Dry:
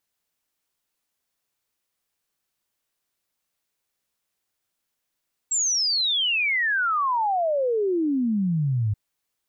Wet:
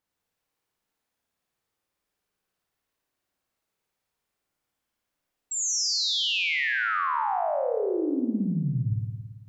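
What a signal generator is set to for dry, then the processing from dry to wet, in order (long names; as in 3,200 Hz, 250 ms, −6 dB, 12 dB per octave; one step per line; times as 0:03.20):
exponential sine sweep 7,700 Hz → 100 Hz 3.43 s −20 dBFS
brickwall limiter −27 dBFS
flutter between parallel walls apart 9.5 metres, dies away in 1.4 s
one half of a high-frequency compander decoder only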